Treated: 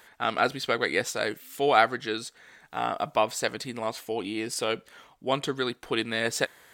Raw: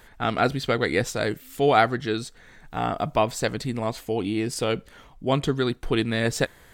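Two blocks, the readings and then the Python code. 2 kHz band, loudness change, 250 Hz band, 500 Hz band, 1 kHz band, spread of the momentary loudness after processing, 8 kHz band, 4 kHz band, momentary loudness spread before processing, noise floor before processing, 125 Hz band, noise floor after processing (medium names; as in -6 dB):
-0.5 dB, -3.0 dB, -7.5 dB, -3.5 dB, -1.5 dB, 10 LU, 0.0 dB, 0.0 dB, 9 LU, -52 dBFS, -13.0 dB, -59 dBFS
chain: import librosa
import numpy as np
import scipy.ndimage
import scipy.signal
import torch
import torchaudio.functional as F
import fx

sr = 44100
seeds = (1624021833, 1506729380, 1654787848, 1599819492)

y = fx.highpass(x, sr, hz=570.0, slope=6)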